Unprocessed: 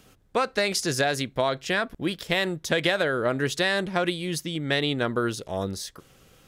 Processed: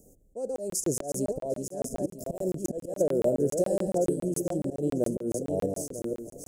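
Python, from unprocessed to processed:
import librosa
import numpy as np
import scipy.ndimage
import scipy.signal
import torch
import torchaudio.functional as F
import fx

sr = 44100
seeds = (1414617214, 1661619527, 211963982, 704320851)

y = fx.reverse_delay_fb(x, sr, ms=472, feedback_pct=42, wet_db=-6.0)
y = fx.peak_eq(y, sr, hz=110.0, db=-7.5, octaves=1.3)
y = fx.auto_swell(y, sr, attack_ms=160.0)
y = scipy.signal.sosfilt(scipy.signal.ellip(3, 1.0, 40, [590.0, 7000.0], 'bandstop', fs=sr, output='sos'), y)
y = y + 10.0 ** (-22.5 / 20.0) * np.pad(y, (int(751 * sr / 1000.0), 0))[:len(y)]
y = fx.buffer_crackle(y, sr, first_s=0.56, period_s=0.14, block=1024, kind='zero')
y = y * 10.0 ** (2.5 / 20.0)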